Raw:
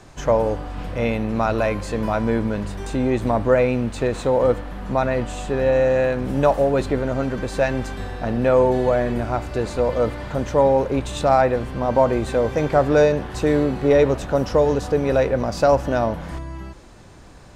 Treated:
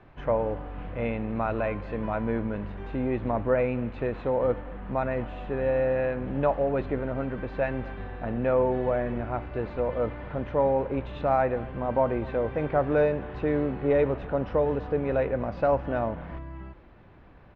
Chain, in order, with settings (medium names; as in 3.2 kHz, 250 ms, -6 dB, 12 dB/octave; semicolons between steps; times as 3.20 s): low-pass 2.8 kHz 24 dB/octave; on a send: delay 245 ms -21.5 dB; on the sum: trim -7.5 dB